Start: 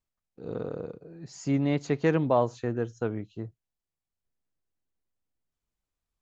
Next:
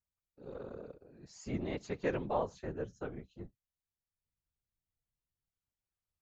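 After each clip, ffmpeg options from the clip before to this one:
-af "equalizer=f=210:w=0.77:g=-4.5,afftfilt=real='hypot(re,im)*cos(2*PI*random(0))':imag='hypot(re,im)*sin(2*PI*random(1))':win_size=512:overlap=0.75,volume=0.75"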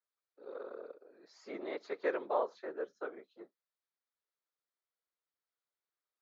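-af "highpass=f=370:w=0.5412,highpass=f=370:w=1.3066,equalizer=f=800:t=q:w=4:g=-3,equalizer=f=1300:t=q:w=4:g=4,equalizer=f=2800:t=q:w=4:g=-10,lowpass=f=4500:w=0.5412,lowpass=f=4500:w=1.3066,volume=1.26"

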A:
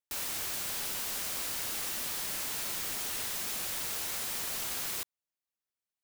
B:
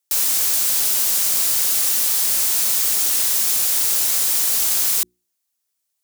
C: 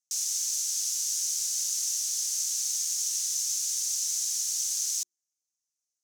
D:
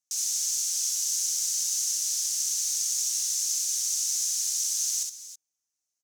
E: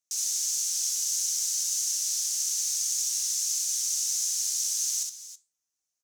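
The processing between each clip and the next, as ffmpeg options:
-af "bass=f=250:g=-3,treble=f=4000:g=11,bandreject=f=60:t=h:w=6,bandreject=f=120:t=h:w=6,bandreject=f=180:t=h:w=6,bandreject=f=240:t=h:w=6,bandreject=f=300:t=h:w=6,bandreject=f=360:t=h:w=6,volume=2.37"
-af "bandpass=f=6200:t=q:w=4.6:csg=0"
-af "aecho=1:1:64|316|326:0.668|0.15|0.158"
-af "flanger=delay=9.2:depth=5.3:regen=80:speed=1.6:shape=sinusoidal,volume=1.58"

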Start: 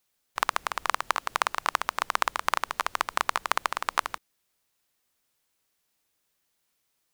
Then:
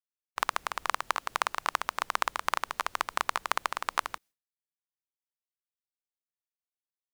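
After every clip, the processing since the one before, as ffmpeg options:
-af "agate=range=0.0224:threshold=0.00355:ratio=3:detection=peak,volume=0.708"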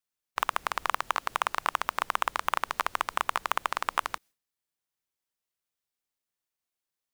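-filter_complex "[0:a]asplit=2[s0][s1];[s1]acompressor=threshold=0.0158:ratio=6,volume=0.794[s2];[s0][s2]amix=inputs=2:normalize=0,asoftclip=type=hard:threshold=0.251,volume=1.19"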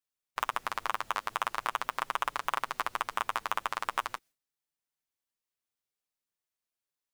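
-af "flanger=delay=6.8:depth=2.6:regen=-16:speed=0.43:shape=triangular"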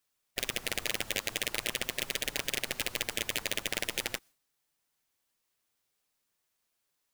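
-af "acrusher=bits=2:mode=log:mix=0:aa=0.000001,afftfilt=real='re*lt(hypot(re,im),0.0355)':imag='im*lt(hypot(re,im),0.0355)':win_size=1024:overlap=0.75,volume=2.66"

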